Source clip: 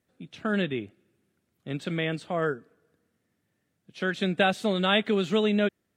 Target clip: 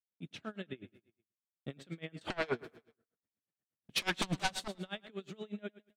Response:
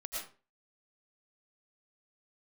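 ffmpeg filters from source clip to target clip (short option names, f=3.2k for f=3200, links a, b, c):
-filter_complex "[0:a]agate=range=-36dB:threshold=-53dB:ratio=16:detection=peak,acompressor=threshold=-38dB:ratio=5,asettb=1/sr,asplit=3[a][b][c];[a]atrim=end=2.214[d];[b]atrim=start=2.21:end=4.68,asetpts=PTS-STARTPTS,afade=t=in:d=0.004:c=qsin,afade=t=out:st=2.466:d=0.004:c=qsin,aeval=exprs='0.0501*sin(PI/2*4.47*val(0)/0.0501)':c=same[e];[c]atrim=start=4.676[f];[d][e]acrossfade=d=0.004:c1=hsin:c2=qsin[g];[g][f]acrossfade=d=0.004:c1=qsin:c2=hsin,aecho=1:1:105|210|315|420:0.188|0.0716|0.0272|0.0103,aeval=exprs='val(0)*pow(10,-27*(0.5-0.5*cos(2*PI*8.3*n/s))/20)':c=same,volume=1.5dB"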